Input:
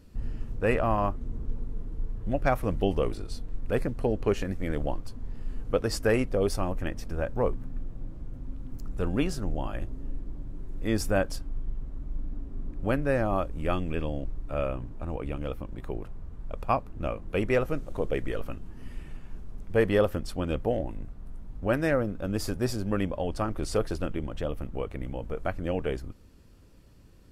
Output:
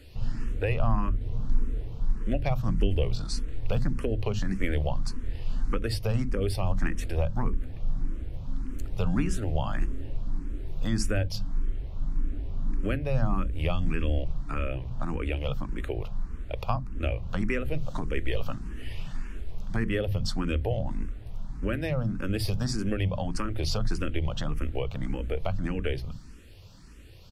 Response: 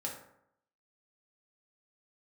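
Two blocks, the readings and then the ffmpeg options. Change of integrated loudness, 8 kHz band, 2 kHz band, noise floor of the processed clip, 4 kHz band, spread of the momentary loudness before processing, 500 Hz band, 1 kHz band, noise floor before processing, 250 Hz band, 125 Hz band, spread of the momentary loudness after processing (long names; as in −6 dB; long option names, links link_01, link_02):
−1.0 dB, 0.0 dB, −1.5 dB, −42 dBFS, +3.5 dB, 16 LU, −5.5 dB, −4.0 dB, −48 dBFS, −1.0 dB, +4.0 dB, 9 LU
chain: -filter_complex "[0:a]equalizer=frequency=3500:width=0.47:gain=9.5,acrossover=split=190[link_01][link_02];[link_01]aecho=1:1:52.48|218.7:0.891|0.316[link_03];[link_02]acompressor=threshold=-33dB:ratio=6[link_04];[link_03][link_04]amix=inputs=2:normalize=0,asplit=2[link_05][link_06];[link_06]afreqshift=1.7[link_07];[link_05][link_07]amix=inputs=2:normalize=1,volume=5.5dB"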